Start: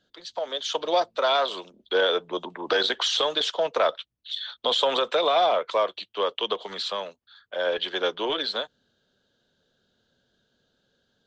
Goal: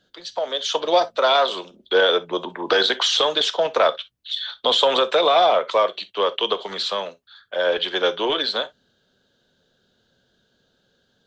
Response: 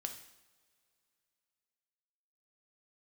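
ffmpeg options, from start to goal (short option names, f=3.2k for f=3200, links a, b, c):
-filter_complex "[0:a]asplit=2[a][b];[1:a]atrim=start_sample=2205,atrim=end_sample=3087[c];[b][c]afir=irnorm=-1:irlink=0,volume=0.5dB[d];[a][d]amix=inputs=2:normalize=0"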